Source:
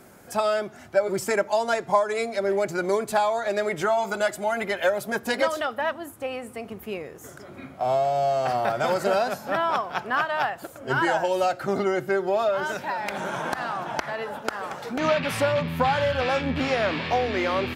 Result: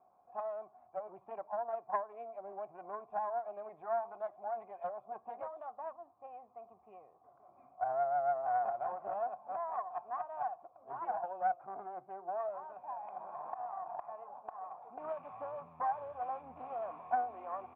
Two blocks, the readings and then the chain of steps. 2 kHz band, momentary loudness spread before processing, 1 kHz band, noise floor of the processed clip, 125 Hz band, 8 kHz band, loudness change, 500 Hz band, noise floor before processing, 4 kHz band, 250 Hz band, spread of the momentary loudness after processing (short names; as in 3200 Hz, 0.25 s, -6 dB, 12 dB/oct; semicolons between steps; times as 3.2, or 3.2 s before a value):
-25.5 dB, 9 LU, -10.5 dB, -66 dBFS, under -30 dB, under -40 dB, -14.5 dB, -16.5 dB, -46 dBFS, under -40 dB, -29.5 dB, 13 LU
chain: vibrato 6.9 Hz 52 cents; vocal tract filter a; Doppler distortion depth 0.15 ms; gain -4.5 dB